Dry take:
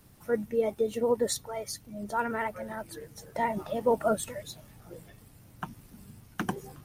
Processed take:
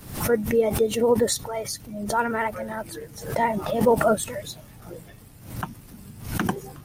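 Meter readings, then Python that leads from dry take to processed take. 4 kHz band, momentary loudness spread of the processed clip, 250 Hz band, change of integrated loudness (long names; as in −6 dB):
+7.5 dB, 20 LU, +8.0 dB, +6.5 dB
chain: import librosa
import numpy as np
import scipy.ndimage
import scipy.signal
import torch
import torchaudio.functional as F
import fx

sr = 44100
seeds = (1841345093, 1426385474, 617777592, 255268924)

y = fx.pre_swell(x, sr, db_per_s=89.0)
y = y * librosa.db_to_amplitude(6.0)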